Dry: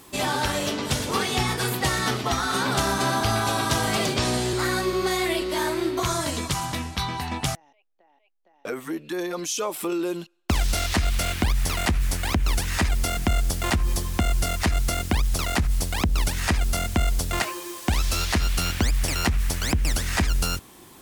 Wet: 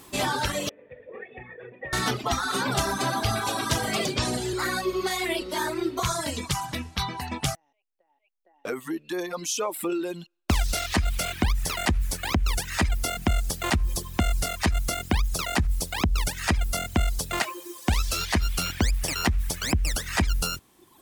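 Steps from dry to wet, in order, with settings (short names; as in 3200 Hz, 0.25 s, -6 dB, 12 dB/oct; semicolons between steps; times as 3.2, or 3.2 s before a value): 0.69–1.93 vocal tract filter e; reverb removal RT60 1.5 s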